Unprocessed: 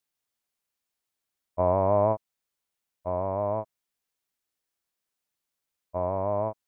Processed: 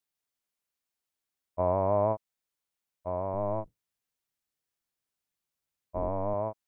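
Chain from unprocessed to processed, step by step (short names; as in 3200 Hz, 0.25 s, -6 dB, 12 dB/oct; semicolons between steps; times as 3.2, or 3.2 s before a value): 3.33–6.34 octaver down 1 oct, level +2 dB; gain -3.5 dB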